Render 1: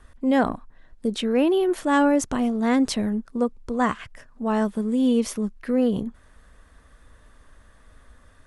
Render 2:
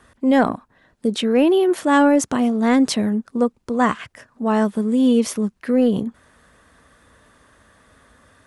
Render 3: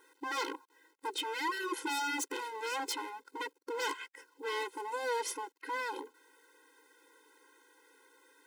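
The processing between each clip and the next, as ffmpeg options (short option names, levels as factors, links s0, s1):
-af "highpass=110,acontrast=22"
-af "aeval=exprs='0.1*(abs(mod(val(0)/0.1+3,4)-2)-1)':c=same,acrusher=bits=9:mix=0:aa=0.000001,afftfilt=real='re*eq(mod(floor(b*sr/1024/270),2),1)':imag='im*eq(mod(floor(b*sr/1024/270),2),1)':win_size=1024:overlap=0.75,volume=0.501"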